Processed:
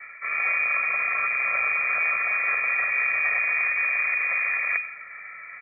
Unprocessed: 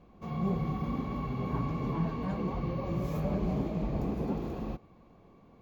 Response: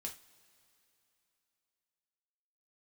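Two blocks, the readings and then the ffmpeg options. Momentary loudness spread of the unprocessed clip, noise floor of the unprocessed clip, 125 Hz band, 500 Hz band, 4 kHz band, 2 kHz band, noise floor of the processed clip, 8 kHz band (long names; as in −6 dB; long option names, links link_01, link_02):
5 LU, −59 dBFS, below −30 dB, −6.5 dB, below −15 dB, +32.0 dB, −42 dBFS, can't be measured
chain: -filter_complex "[0:a]asplit=2[link_01][link_02];[link_02]aeval=exprs='clip(val(0),-1,0.00794)':channel_layout=same,volume=-7.5dB[link_03];[link_01][link_03]amix=inputs=2:normalize=0,highpass=83,aeval=exprs='0.133*(cos(1*acos(clip(val(0)/0.133,-1,1)))-cos(1*PI/2))+0.0299*(cos(2*acos(clip(val(0)/0.133,-1,1)))-cos(2*PI/2))+0.0119*(cos(4*acos(clip(val(0)/0.133,-1,1)))-cos(4*PI/2))+0.00668*(cos(5*acos(clip(val(0)/0.133,-1,1)))-cos(5*PI/2))+0.0237*(cos(8*acos(clip(val(0)/0.133,-1,1)))-cos(8*PI/2))':channel_layout=same,areverse,acompressor=threshold=-35dB:ratio=10,areverse,lowpass=frequency=2100:width_type=q:width=0.5098,lowpass=frequency=2100:width_type=q:width=0.6013,lowpass=frequency=2100:width_type=q:width=0.9,lowpass=frequency=2100:width_type=q:width=2.563,afreqshift=-2500,aemphasis=mode=production:type=50kf,aecho=1:1:1.6:0.91,aecho=1:1:134:0.126,afreqshift=-42,acontrast=68,equalizer=frequency=780:width_type=o:width=1.8:gain=5,volume=2dB" -ar 48000 -c:a libopus -b:a 64k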